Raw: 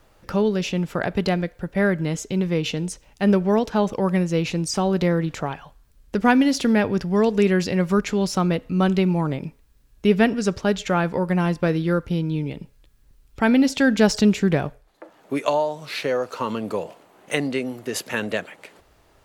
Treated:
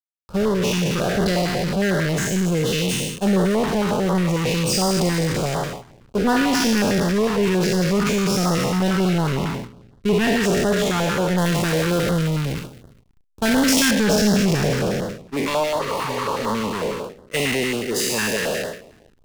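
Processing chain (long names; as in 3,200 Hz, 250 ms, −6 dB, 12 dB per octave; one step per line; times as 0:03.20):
peak hold with a decay on every bin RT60 2.50 s
parametric band 300 Hz −5 dB 0.28 octaves
power curve on the samples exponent 0.5
noise gate −15 dBFS, range −10 dB
0:11.38–0:13.91: high-shelf EQ 5,000 Hz +11.5 dB
0:15.82–0:16.46: healed spectral selection 270–8,100 Hz after
slack as between gear wheels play −20 dBFS
notch on a step sequencer 11 Hz 540–2,400 Hz
level −7.5 dB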